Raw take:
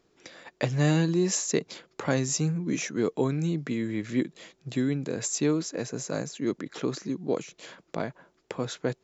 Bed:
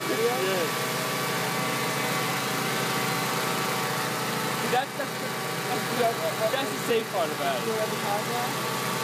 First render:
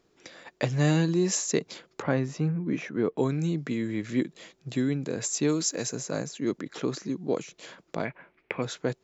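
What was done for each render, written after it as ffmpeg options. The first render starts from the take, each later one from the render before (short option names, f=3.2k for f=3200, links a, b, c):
-filter_complex "[0:a]asettb=1/sr,asplit=3[a][b][c];[a]atrim=end=2.024[d];[b]atrim=start=2.02:end=3.18,asetpts=PTS-STARTPTS,afade=t=in:d=0.004:c=qsin,afade=t=out:st=1.156:d=0.004:c=qsin,lowpass=2.3k[e];[c]atrim=start=3.176[f];[d][e]acrossfade=d=0.004:c1=hsin:c2=qsin[g];[g][f]acrossfade=d=0.004:c1=qsin:c2=hsin,asplit=3[h][i][j];[h]afade=t=out:st=5.47:d=0.02[k];[i]aemphasis=mode=production:type=75fm,afade=t=in:st=5.47:d=0.02,afade=t=out:st=5.95:d=0.02[l];[j]afade=t=in:st=5.95:d=0.02[m];[k][l][m]amix=inputs=3:normalize=0,asettb=1/sr,asplit=3[n][o][p];[n]atrim=end=8.054[q];[o]atrim=start=8.05:end=8.62,asetpts=PTS-STARTPTS,afade=t=in:d=0.004:c=qsin,afade=t=out:st=0.566:d=0.004:c=qsin,lowpass=f=2.3k:t=q:w=5.4[r];[p]atrim=start=8.616[s];[q][r]acrossfade=d=0.004:c1=hsin:c2=qsin[t];[t][s]acrossfade=d=0.004:c1=qsin:c2=hsin"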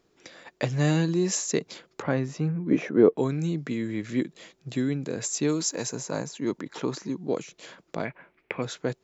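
-filter_complex "[0:a]asettb=1/sr,asplit=3[a][b][c];[a]atrim=end=2.714[d];[b]atrim=start=2.71:end=3.14,asetpts=PTS-STARTPTS,afade=t=in:d=0.004:c=qsin,afade=t=out:st=0.426:d=0.004:c=qsin,equalizer=f=460:w=0.55:g=10.5[e];[c]atrim=start=3.136[f];[d][e]acrossfade=d=0.004:c1=hsin:c2=qsin[g];[g][f]acrossfade=d=0.004:c1=qsin:c2=hsin,asettb=1/sr,asplit=3[h][i][j];[h]atrim=end=5.594[k];[i]atrim=start=5.59:end=7.21,asetpts=PTS-STARTPTS,afade=t=in:d=0.004:c=qsin,afade=t=out:st=1.616:d=0.004:c=qsin,equalizer=f=930:t=o:w=0.31:g=9[l];[j]atrim=start=7.206[m];[k][l]acrossfade=d=0.004:c1=hsin:c2=qsin[n];[n][m]acrossfade=d=0.004:c1=qsin:c2=hsin"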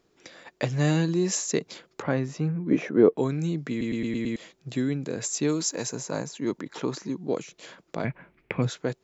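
-filter_complex "[0:a]asettb=1/sr,asplit=3[a][b][c];[a]atrim=end=8.044[d];[b]atrim=start=8.04:end=8.7,asetpts=PTS-STARTPTS,afade=t=in:d=0.004:c=qsin,afade=t=out:st=0.656:d=0.004:c=qsin,bass=f=250:g=12,treble=f=4k:g=0[e];[c]atrim=start=8.696[f];[d][e]acrossfade=d=0.004:c1=hsin:c2=qsin[g];[g][f]acrossfade=d=0.004:c1=qsin:c2=hsin,asplit=7[h][i][j][k][l][m][n];[h]atrim=end=3.812[o];[i]atrim=start=3.698:end=3.812[p];[j]atrim=start=3.698:end=3.812[q];[k]atrim=start=3.698:end=3.812[r];[l]atrim=start=3.698:end=3.812[s];[m]atrim=start=3.698:end=3.812[t];[n]atrim=start=4.358[u];[o][p]acrossfade=d=0.004:c1=hsin:c2=hsin[v];[v][q]acrossfade=d=0.004:c1=hsin:c2=hsin[w];[w][r]acrossfade=d=0.004:c1=hsin:c2=hsin[x];[x][s]acrossfade=d=0.004:c1=hsin:c2=hsin[y];[y][t]acrossfade=d=0.004:c1=hsin:c2=hsin[z];[z][u]acrossfade=d=0.004:c1=hsin:c2=hsin"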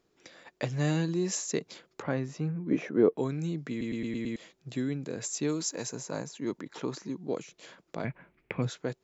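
-af "volume=-5dB"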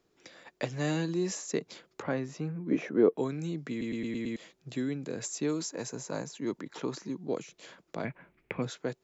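-filter_complex "[0:a]acrossover=split=170|2200[a][b][c];[a]acompressor=threshold=-45dB:ratio=6[d];[c]alimiter=level_in=2.5dB:limit=-24dB:level=0:latency=1:release=468,volume=-2.5dB[e];[d][b][e]amix=inputs=3:normalize=0"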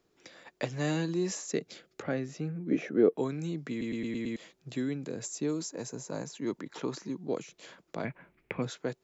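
-filter_complex "[0:a]asettb=1/sr,asplit=3[a][b][c];[a]atrim=end=1.534[d];[b]atrim=start=1.53:end=3.12,asetpts=PTS-STARTPTS,afade=t=in:d=0.004:c=qsin,afade=t=out:st=1.586:d=0.004:c=qsin,equalizer=f=990:w=4.7:g=-13[e];[c]atrim=start=3.116[f];[d][e]acrossfade=d=0.004:c1=hsin:c2=qsin[g];[g][f]acrossfade=d=0.004:c1=qsin:c2=hsin,asettb=1/sr,asplit=3[h][i][j];[h]atrim=end=5.094[k];[i]atrim=start=5.09:end=6.21,asetpts=PTS-STARTPTS,afade=t=in:d=0.004:c=qsin,afade=t=out:st=1.116:d=0.004:c=qsin,equalizer=f=2k:t=o:w=2.9:g=-5[l];[j]atrim=start=6.206[m];[k][l]acrossfade=d=0.004:c1=hsin:c2=qsin[n];[n][m]acrossfade=d=0.004:c1=qsin:c2=hsin"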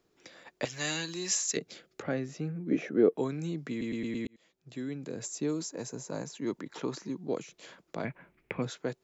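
-filter_complex "[0:a]asettb=1/sr,asplit=3[a][b][c];[a]atrim=end=0.654[d];[b]atrim=start=0.65:end=1.57,asetpts=PTS-STARTPTS,afade=t=in:d=0.004:c=qsin,afade=t=out:st=0.916:d=0.004:c=qsin,tiltshelf=f=1.2k:g=-10[e];[c]atrim=start=1.566[f];[d][e]acrossfade=d=0.004:c1=hsin:c2=qsin[g];[g][f]acrossfade=d=0.004:c1=qsin:c2=hsin,asplit=2[h][i];[h]atrim=end=4.27,asetpts=PTS-STARTPTS,afade=t=out:st=4.266:d=0.004:c=hsin[j];[i]atrim=start=4.27,asetpts=PTS-STARTPTS,afade=t=in:d=0.97[k];[j][k]concat=n=2:v=0:a=1"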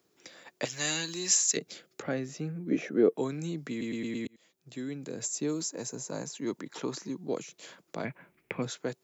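-af "highpass=100,highshelf=f=6.3k:g=10"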